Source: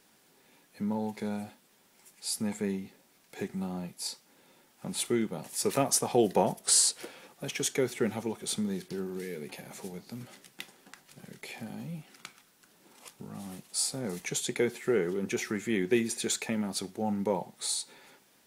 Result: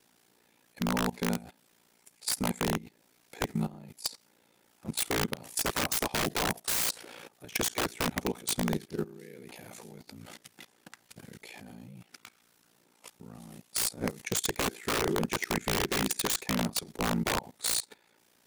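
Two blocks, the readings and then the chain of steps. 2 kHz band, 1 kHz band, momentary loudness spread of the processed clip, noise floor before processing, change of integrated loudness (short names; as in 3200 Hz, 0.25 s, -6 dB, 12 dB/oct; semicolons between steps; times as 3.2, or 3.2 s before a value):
+5.0 dB, +2.0 dB, 20 LU, -65 dBFS, 0.0 dB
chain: ring modulator 29 Hz; wrapped overs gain 26 dB; level quantiser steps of 19 dB; gain +9 dB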